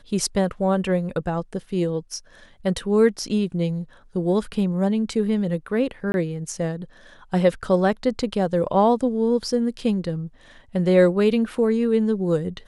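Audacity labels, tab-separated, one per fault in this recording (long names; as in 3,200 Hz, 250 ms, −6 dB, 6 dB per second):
6.120000	6.140000	drop-out 21 ms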